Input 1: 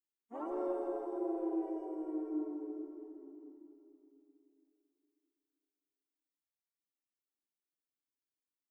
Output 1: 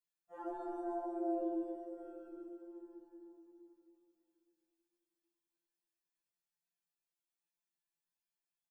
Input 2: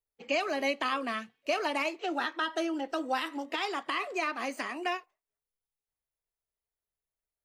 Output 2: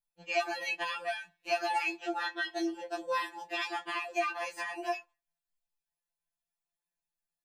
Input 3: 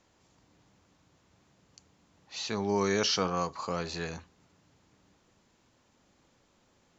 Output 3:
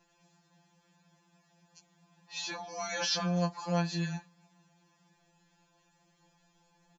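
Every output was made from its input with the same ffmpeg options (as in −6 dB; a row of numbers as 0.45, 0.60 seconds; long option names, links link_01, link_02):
-af "aecho=1:1:7:0.56,afftfilt=real='re*2.83*eq(mod(b,8),0)':imag='im*2.83*eq(mod(b,8),0)':win_size=2048:overlap=0.75"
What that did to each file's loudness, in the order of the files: −2.5, −2.0, −2.5 LU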